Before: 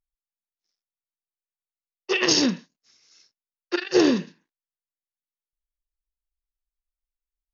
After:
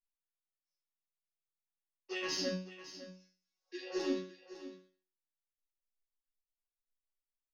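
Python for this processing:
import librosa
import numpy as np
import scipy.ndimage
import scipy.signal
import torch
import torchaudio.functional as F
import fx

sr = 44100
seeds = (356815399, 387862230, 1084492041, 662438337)

y = fx.spec_repair(x, sr, seeds[0], start_s=3.47, length_s=0.42, low_hz=480.0, high_hz=1600.0, source='both')
y = fx.chorus_voices(y, sr, voices=2, hz=1.0, base_ms=12, depth_ms=4.3, mix_pct=50)
y = 10.0 ** (-11.5 / 20.0) * np.tanh(y / 10.0 ** (-11.5 / 20.0))
y = fx.resonator_bank(y, sr, root=54, chord='fifth', decay_s=0.42)
y = y + 10.0 ** (-14.0 / 20.0) * np.pad(y, (int(555 * sr / 1000.0), 0))[:len(y)]
y = y * 10.0 ** (4.0 / 20.0)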